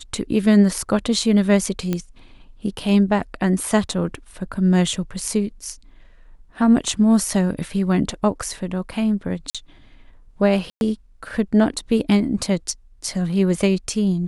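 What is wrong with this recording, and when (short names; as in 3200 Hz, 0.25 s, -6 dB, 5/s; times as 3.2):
1.93 pop -10 dBFS
9.5–9.55 gap 46 ms
10.7–10.81 gap 0.111 s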